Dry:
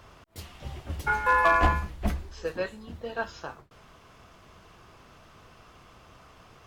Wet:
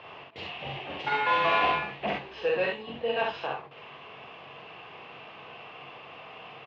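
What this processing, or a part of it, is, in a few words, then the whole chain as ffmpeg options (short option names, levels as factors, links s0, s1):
overdrive pedal into a guitar cabinet: -filter_complex "[0:a]asplit=2[s0][s1];[s1]highpass=f=720:p=1,volume=10,asoftclip=type=tanh:threshold=0.224[s2];[s0][s2]amix=inputs=2:normalize=0,lowpass=f=6400:p=1,volume=0.501,highpass=100,equalizer=f=140:t=q:w=4:g=8,equalizer=f=460:t=q:w=4:g=5,equalizer=f=770:t=q:w=4:g=5,equalizer=f=1400:t=q:w=4:g=-8,equalizer=f=2700:t=q:w=4:g=8,lowpass=f=3400:w=0.5412,lowpass=f=3400:w=1.3066,asettb=1/sr,asplit=3[s3][s4][s5];[s3]atrim=end=0.714[s6];[s4]atrim=start=0.71:end=2.29,asetpts=PTS-STARTPTS,afade=t=in:d=0.004:c=qsin,afade=t=out:st=1.576:d=0.004:c=qsin,highpass=f=210:p=1[s7];[s5]atrim=start=2.286[s8];[s6][s7]acrossfade=d=0.004:c1=hsin:c2=qsin[s9];[s9][s8]acrossfade=d=0.004:c1=qsin:c2=hsin,aecho=1:1:44|65:0.668|0.668,volume=0.447"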